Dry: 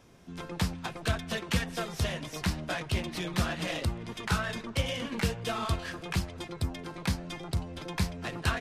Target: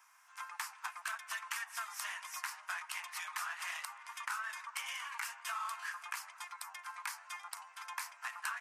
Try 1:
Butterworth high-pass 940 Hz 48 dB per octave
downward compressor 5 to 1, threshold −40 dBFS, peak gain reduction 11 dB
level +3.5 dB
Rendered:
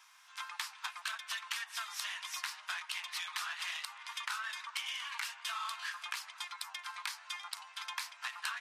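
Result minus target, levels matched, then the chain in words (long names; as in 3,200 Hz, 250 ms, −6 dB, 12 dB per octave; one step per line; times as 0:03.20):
4,000 Hz band +6.0 dB
Butterworth high-pass 940 Hz 48 dB per octave
parametric band 3,700 Hz −15 dB 1 octave
downward compressor 5 to 1, threshold −40 dBFS, peak gain reduction 8.5 dB
level +3.5 dB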